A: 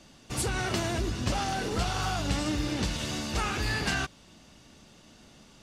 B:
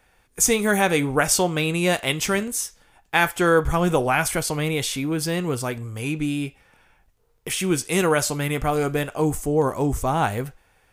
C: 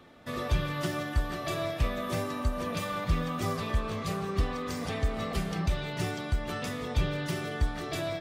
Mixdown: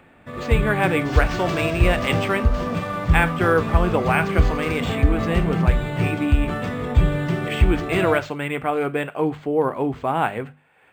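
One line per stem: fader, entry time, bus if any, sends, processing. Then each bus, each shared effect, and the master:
1.86 s -6.5 dB -> 2.57 s -17.5 dB, 0.75 s, no send, dry
-7.5 dB, 0.00 s, no send, HPF 160 Hz; upward compressor, threshold -40 dBFS; resonant high shelf 4000 Hz -13 dB, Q 1.5
+0.5 dB, 0.00 s, no send, tone controls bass +5 dB, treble -14 dB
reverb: off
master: notches 50/100/150/200/250 Hz; AGC gain up to 8 dB; decimation joined by straight lines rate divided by 4×

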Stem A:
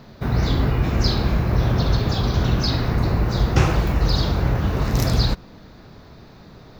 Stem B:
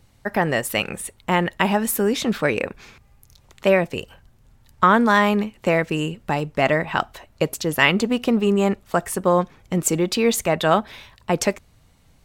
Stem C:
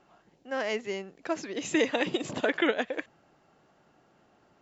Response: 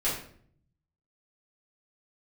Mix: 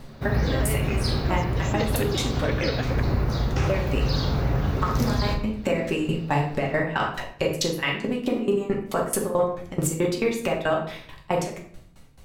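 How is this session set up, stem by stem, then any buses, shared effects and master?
-7.5 dB, 0.00 s, send -10 dB, dry
+3.0 dB, 0.00 s, send -4.5 dB, compressor, threshold -24 dBFS, peak gain reduction 13 dB; dB-ramp tremolo decaying 4.6 Hz, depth 26 dB
-1.0 dB, 0.00 s, no send, dry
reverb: on, RT60 0.55 s, pre-delay 4 ms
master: vocal rider 0.5 s; limiter -12.5 dBFS, peak gain reduction 7.5 dB

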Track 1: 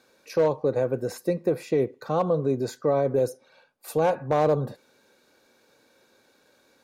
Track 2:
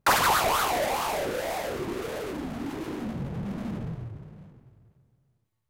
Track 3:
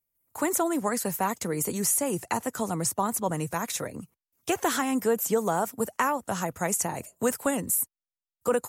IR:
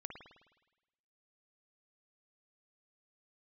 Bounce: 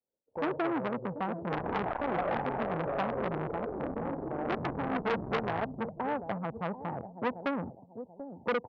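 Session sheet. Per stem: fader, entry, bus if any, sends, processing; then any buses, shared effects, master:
-10.5 dB, 0.00 s, send -4 dB, echo send -18 dB, low shelf 140 Hz +5.5 dB; auto duck -9 dB, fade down 0.40 s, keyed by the third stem
-0.5 dB, 1.45 s, no send, no echo send, soft clip -17.5 dBFS, distortion -19 dB
-1.0 dB, 0.00 s, send -22 dB, echo send -14.5 dB, dry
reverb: on, RT60 1.1 s, pre-delay 52 ms
echo: feedback echo 0.737 s, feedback 29%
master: steep low-pass 900 Hz 72 dB/oct; expander -60 dBFS; core saturation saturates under 1700 Hz

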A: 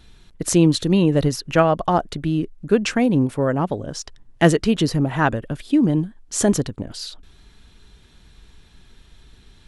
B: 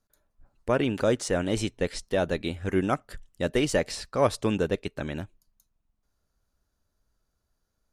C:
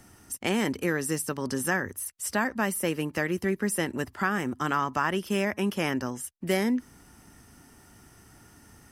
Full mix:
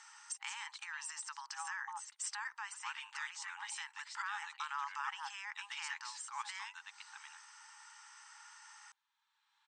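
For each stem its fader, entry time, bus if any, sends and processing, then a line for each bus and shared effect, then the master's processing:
-12.5 dB, 0.00 s, no send, tilt shelf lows +10 dB, about 1100 Hz; auto duck -12 dB, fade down 1.70 s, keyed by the third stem
-12.5 dB, 2.15 s, no send, dry
+2.5 dB, 0.00 s, no send, bell 9300 Hz -3.5 dB 0.27 oct; limiter -20.5 dBFS, peak gain reduction 9 dB; compressor 3:1, threshold -41 dBFS, peak gain reduction 12.5 dB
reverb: off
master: FFT band-pass 800–8800 Hz

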